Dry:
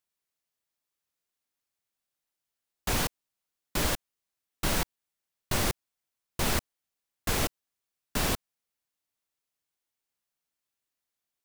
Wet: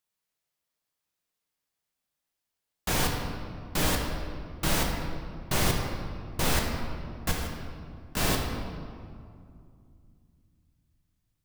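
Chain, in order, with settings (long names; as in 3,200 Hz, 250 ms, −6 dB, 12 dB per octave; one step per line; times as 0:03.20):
0:07.31–0:08.17: downward compressor, threshold −38 dBFS, peak gain reduction 13.5 dB
convolution reverb RT60 2.3 s, pre-delay 5 ms, DRR 0.5 dB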